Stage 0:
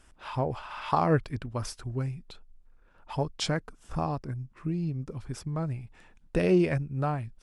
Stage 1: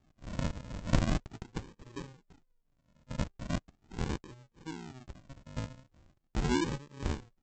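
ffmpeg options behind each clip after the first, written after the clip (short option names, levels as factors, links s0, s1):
-filter_complex "[0:a]acrossover=split=390 2700:gain=0.1 1 0.158[s0][s1][s2];[s0][s1][s2]amix=inputs=3:normalize=0,aresample=16000,acrusher=samples=32:mix=1:aa=0.000001:lfo=1:lforange=19.2:lforate=0.4,aresample=44100"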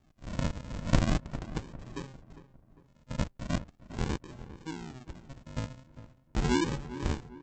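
-filter_complex "[0:a]asplit=2[s0][s1];[s1]adelay=402,lowpass=f=1700:p=1,volume=0.2,asplit=2[s2][s3];[s3]adelay=402,lowpass=f=1700:p=1,volume=0.45,asplit=2[s4][s5];[s5]adelay=402,lowpass=f=1700:p=1,volume=0.45,asplit=2[s6][s7];[s7]adelay=402,lowpass=f=1700:p=1,volume=0.45[s8];[s0][s2][s4][s6][s8]amix=inputs=5:normalize=0,volume=1.33"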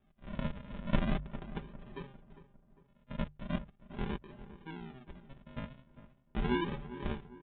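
-af "aresample=8000,aresample=44100,bandreject=f=50:t=h:w=6,bandreject=f=100:t=h:w=6,bandreject=f=150:t=h:w=6,aecho=1:1:5:0.6,volume=0.531"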